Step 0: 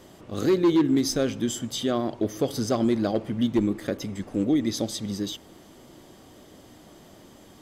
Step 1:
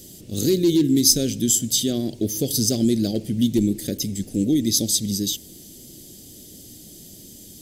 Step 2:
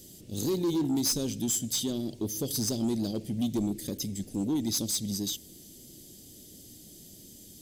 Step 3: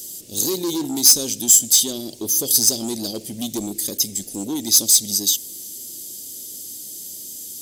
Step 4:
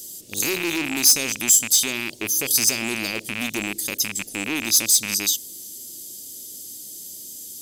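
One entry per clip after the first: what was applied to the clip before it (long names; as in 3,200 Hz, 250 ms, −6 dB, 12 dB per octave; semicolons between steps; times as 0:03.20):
drawn EQ curve 190 Hz 0 dB, 430 Hz −6 dB, 740 Hz −17 dB, 1,100 Hz −29 dB, 1,600 Hz −16 dB, 4,400 Hz +5 dB, 12,000 Hz +14 dB; level +6 dB
soft clipping −15.5 dBFS, distortion −14 dB; level −7 dB
bass and treble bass −11 dB, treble +12 dB; level +6.5 dB
loose part that buzzes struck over −36 dBFS, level −12 dBFS; level −3 dB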